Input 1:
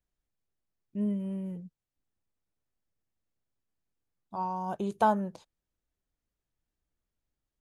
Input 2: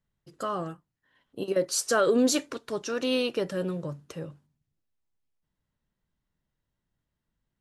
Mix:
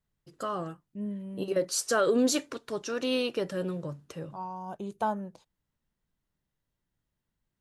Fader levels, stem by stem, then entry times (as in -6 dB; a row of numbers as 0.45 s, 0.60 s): -5.0 dB, -2.0 dB; 0.00 s, 0.00 s